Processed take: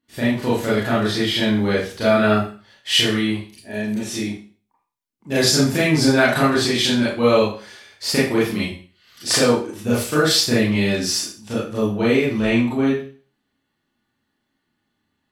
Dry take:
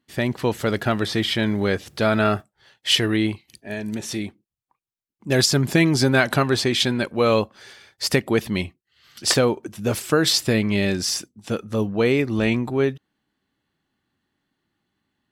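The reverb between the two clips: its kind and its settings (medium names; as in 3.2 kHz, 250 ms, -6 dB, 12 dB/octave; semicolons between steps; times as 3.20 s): Schroeder reverb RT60 0.41 s, combs from 26 ms, DRR -8.5 dB; trim -6.5 dB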